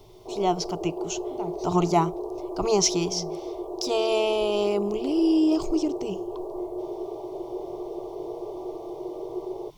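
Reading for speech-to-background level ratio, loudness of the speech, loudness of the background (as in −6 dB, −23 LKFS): 8.5 dB, −25.5 LKFS, −34.0 LKFS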